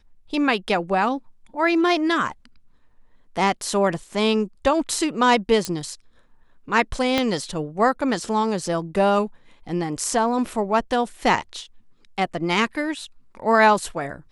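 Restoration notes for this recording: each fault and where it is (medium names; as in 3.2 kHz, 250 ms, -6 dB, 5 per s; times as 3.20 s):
5.65 s: pop -10 dBFS
7.18 s: pop -6 dBFS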